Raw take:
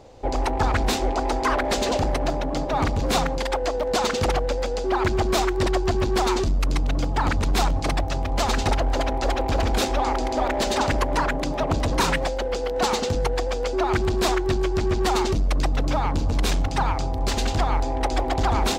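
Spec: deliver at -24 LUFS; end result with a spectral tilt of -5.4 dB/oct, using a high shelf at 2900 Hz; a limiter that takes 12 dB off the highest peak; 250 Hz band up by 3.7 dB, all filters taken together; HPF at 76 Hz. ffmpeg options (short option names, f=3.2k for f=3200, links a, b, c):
-af "highpass=76,equalizer=f=250:t=o:g=5,highshelf=f=2.9k:g=-7.5,volume=4dB,alimiter=limit=-16dB:level=0:latency=1"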